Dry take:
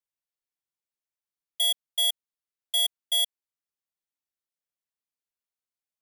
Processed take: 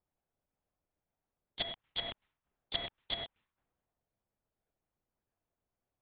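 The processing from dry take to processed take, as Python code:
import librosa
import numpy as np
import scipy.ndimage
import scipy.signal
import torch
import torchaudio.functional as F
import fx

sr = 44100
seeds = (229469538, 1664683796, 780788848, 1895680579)

y = scipy.signal.sosfilt(scipy.signal.butter(2, 190.0, 'highpass', fs=sr, output='sos'), x)
y = fx.env_lowpass_down(y, sr, base_hz=880.0, full_db=-25.5)
y = fx.high_shelf(y, sr, hz=2300.0, db=11.5)
y = fx.level_steps(y, sr, step_db=11)
y = fx.env_lowpass(y, sr, base_hz=570.0, full_db=-41.5)
y = fx.lpc_vocoder(y, sr, seeds[0], excitation='whisper', order=8)
y = fx.spectral_comp(y, sr, ratio=2.0)
y = y * 10.0 ** (3.0 / 20.0)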